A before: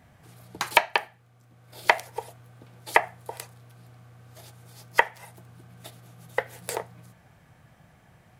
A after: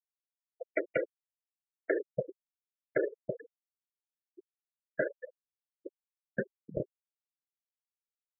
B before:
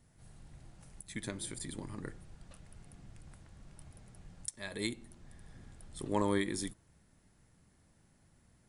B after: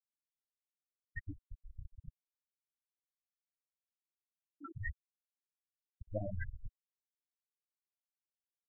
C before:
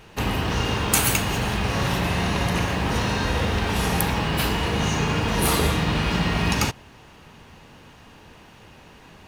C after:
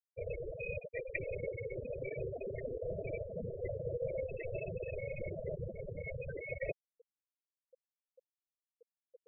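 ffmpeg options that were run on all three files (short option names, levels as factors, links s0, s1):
-af "areverse,acompressor=threshold=0.0178:ratio=8,areverse,highpass=f=41:p=1,highpass=f=210:t=q:w=0.5412,highpass=f=210:t=q:w=1.307,lowpass=f=3300:t=q:w=0.5176,lowpass=f=3300:t=q:w=0.7071,lowpass=f=3300:t=q:w=1.932,afreqshift=-310,equalizer=f=500:t=o:w=1:g=11,equalizer=f=1000:t=o:w=1:g=-10,equalizer=f=2000:t=o:w=1:g=7,afftfilt=real='re*gte(hypot(re,im),0.0501)':imag='im*gte(hypot(re,im),0.0501)':win_size=1024:overlap=0.75,volume=1.19"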